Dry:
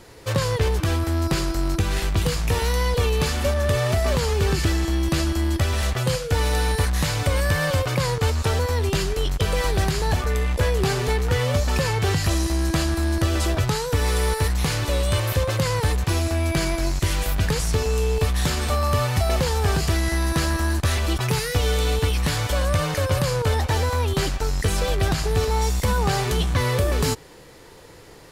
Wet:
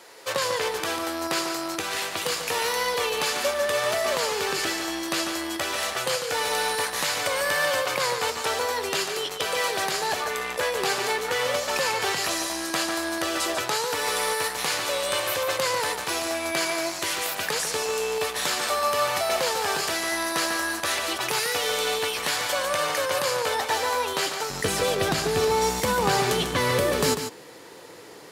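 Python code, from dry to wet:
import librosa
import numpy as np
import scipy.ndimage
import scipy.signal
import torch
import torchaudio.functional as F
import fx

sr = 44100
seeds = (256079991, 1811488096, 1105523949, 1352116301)

y = fx.highpass(x, sr, hz=fx.steps((0.0, 540.0), (24.5, 220.0)), slope=12)
y = y + 10.0 ** (-8.0 / 20.0) * np.pad(y, (int(145 * sr / 1000.0), 0))[:len(y)]
y = y * 10.0 ** (1.5 / 20.0)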